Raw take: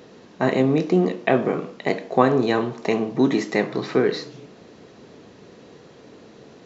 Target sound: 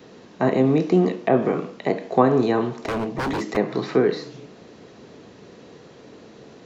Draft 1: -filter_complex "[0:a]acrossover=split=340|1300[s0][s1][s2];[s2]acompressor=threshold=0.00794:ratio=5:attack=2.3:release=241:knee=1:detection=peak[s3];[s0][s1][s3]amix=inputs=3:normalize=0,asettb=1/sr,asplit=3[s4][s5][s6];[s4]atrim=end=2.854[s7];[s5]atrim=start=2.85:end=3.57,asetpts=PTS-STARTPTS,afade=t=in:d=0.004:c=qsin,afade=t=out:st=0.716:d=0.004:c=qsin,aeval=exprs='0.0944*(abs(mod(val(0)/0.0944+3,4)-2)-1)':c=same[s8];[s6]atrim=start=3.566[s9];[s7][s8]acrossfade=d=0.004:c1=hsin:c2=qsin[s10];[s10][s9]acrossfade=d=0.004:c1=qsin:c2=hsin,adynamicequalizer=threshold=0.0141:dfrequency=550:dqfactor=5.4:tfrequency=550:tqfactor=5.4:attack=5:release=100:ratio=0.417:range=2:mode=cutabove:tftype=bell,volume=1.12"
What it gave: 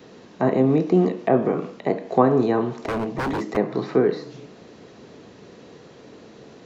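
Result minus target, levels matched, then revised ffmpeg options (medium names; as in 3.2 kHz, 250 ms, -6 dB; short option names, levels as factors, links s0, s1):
compression: peak gain reduction +6.5 dB
-filter_complex "[0:a]acrossover=split=340|1300[s0][s1][s2];[s2]acompressor=threshold=0.02:ratio=5:attack=2.3:release=241:knee=1:detection=peak[s3];[s0][s1][s3]amix=inputs=3:normalize=0,asettb=1/sr,asplit=3[s4][s5][s6];[s4]atrim=end=2.854[s7];[s5]atrim=start=2.85:end=3.57,asetpts=PTS-STARTPTS,afade=t=in:d=0.004:c=qsin,afade=t=out:st=0.716:d=0.004:c=qsin,aeval=exprs='0.0944*(abs(mod(val(0)/0.0944+3,4)-2)-1)':c=same[s8];[s6]atrim=start=3.566[s9];[s7][s8]acrossfade=d=0.004:c1=hsin:c2=qsin[s10];[s10][s9]acrossfade=d=0.004:c1=qsin:c2=hsin,adynamicequalizer=threshold=0.0141:dfrequency=550:dqfactor=5.4:tfrequency=550:tqfactor=5.4:attack=5:release=100:ratio=0.417:range=2:mode=cutabove:tftype=bell,volume=1.12"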